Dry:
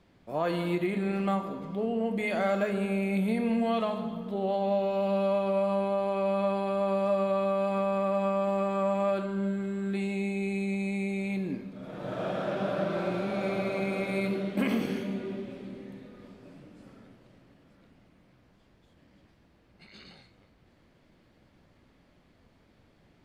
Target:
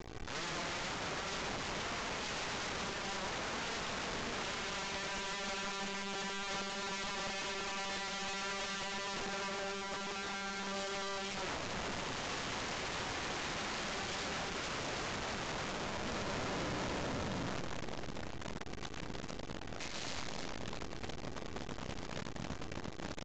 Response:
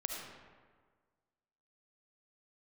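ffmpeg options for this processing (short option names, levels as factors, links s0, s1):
-filter_complex "[0:a]lowshelf=f=400:g=10,asplit=2[s0][s1];[s1]adelay=330,lowpass=f=2600:p=1,volume=0.473,asplit=2[s2][s3];[s3]adelay=330,lowpass=f=2600:p=1,volume=0.53,asplit=2[s4][s5];[s5]adelay=330,lowpass=f=2600:p=1,volume=0.53,asplit=2[s6][s7];[s7]adelay=330,lowpass=f=2600:p=1,volume=0.53,asplit=2[s8][s9];[s9]adelay=330,lowpass=f=2600:p=1,volume=0.53,asplit=2[s10][s11];[s11]adelay=330,lowpass=f=2600:p=1,volume=0.53,asplit=2[s12][s13];[s13]adelay=330,lowpass=f=2600:p=1,volume=0.53[s14];[s0][s2][s4][s6][s8][s10][s12][s14]amix=inputs=8:normalize=0,acontrast=44,acrusher=bits=5:dc=4:mix=0:aa=0.000001,asplit=2[s15][s16];[1:a]atrim=start_sample=2205,asetrate=57330,aresample=44100,lowpass=f=1300:w=0.5412,lowpass=f=1300:w=1.3066[s17];[s16][s17]afir=irnorm=-1:irlink=0,volume=0.0944[s18];[s15][s18]amix=inputs=2:normalize=0,alimiter=level_in=1.78:limit=0.0631:level=0:latency=1,volume=0.562,aecho=1:1:2.6:0.39,aeval=exprs='(mod(79.4*val(0)+1,2)-1)/79.4':c=same,aresample=16000,aresample=44100,volume=1.5"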